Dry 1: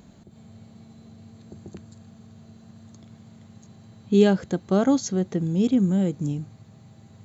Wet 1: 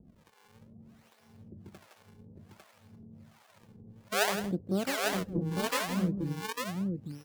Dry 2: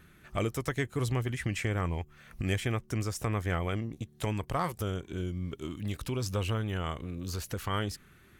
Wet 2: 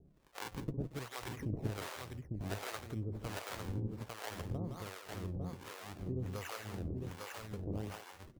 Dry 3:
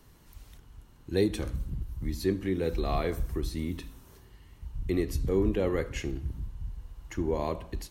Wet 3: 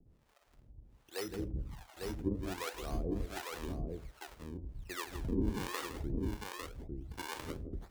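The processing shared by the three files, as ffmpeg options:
-filter_complex "[0:a]acrusher=samples=39:mix=1:aa=0.000001:lfo=1:lforange=62.4:lforate=0.59,aecho=1:1:164|228|851:0.398|0.106|0.668,acrossover=split=520[a][b];[a]aeval=exprs='val(0)*(1-1/2+1/2*cos(2*PI*1.3*n/s))':c=same[c];[b]aeval=exprs='val(0)*(1-1/2-1/2*cos(2*PI*1.3*n/s))':c=same[d];[c][d]amix=inputs=2:normalize=0,volume=-5.5dB"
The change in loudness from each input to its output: -9.5, -9.0, -9.0 LU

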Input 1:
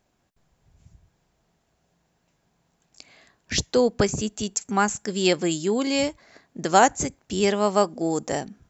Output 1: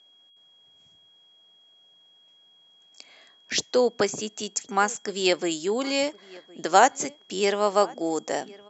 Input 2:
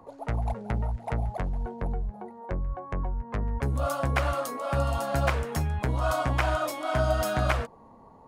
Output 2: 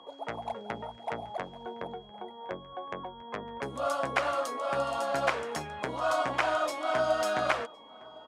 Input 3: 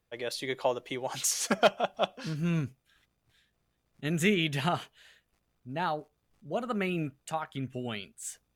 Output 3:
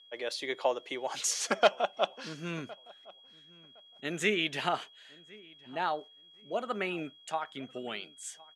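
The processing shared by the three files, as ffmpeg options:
-filter_complex "[0:a]aeval=exprs='val(0)+0.00178*sin(2*PI*3300*n/s)':c=same,highpass=330,lowpass=7.9k,asplit=2[a][b];[b]adelay=1062,lowpass=f=2.5k:p=1,volume=-23dB,asplit=2[c][d];[d]adelay=1062,lowpass=f=2.5k:p=1,volume=0.2[e];[c][e]amix=inputs=2:normalize=0[f];[a][f]amix=inputs=2:normalize=0"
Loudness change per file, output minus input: -1.5, -3.0, -1.5 LU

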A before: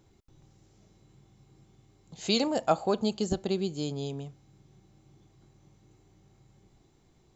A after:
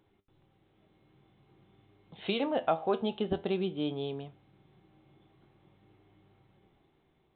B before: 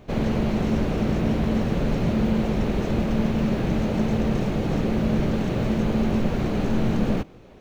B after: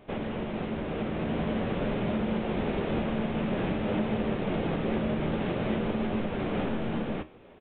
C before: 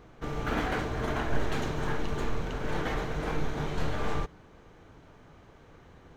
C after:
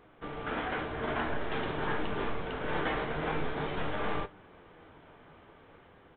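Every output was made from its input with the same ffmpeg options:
-af "flanger=delay=9.7:depth=3.3:regen=70:speed=0.49:shape=sinusoidal,alimiter=limit=-22dB:level=0:latency=1:release=359,dynaudnorm=f=440:g=5:m=4.5dB,lowshelf=f=180:g=-10.5,aresample=8000,aresample=44100,volume=2dB"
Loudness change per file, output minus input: -3.0, -6.5, -1.5 LU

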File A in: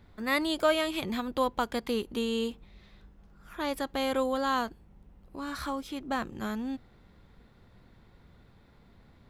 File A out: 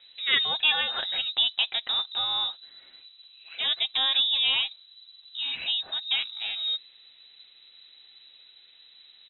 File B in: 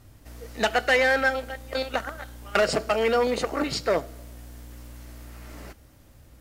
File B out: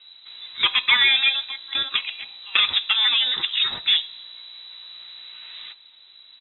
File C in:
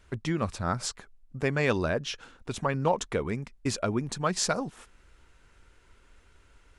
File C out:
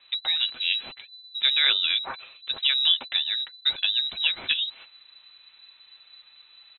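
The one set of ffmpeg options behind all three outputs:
-af "aecho=1:1:7.2:0.41,lowpass=f=3.4k:t=q:w=0.5098,lowpass=f=3.4k:t=q:w=0.6013,lowpass=f=3.4k:t=q:w=0.9,lowpass=f=3.4k:t=q:w=2.563,afreqshift=-4000,volume=3dB"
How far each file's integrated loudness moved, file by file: +6.5, +5.5, +7.5 LU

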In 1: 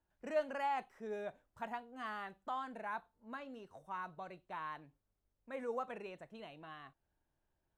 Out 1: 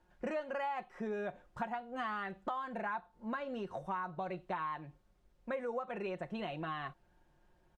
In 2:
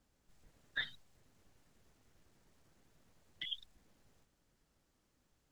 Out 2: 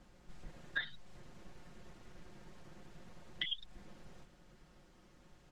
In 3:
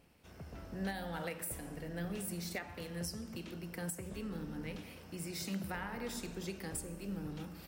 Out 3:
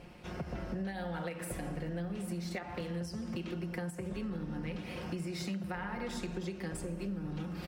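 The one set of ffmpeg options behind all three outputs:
-af "aemphasis=mode=reproduction:type=50fm,aecho=1:1:5.6:0.51,acompressor=threshold=-49dB:ratio=8,volume=13.5dB"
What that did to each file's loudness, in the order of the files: +3.5, +1.0, +3.0 LU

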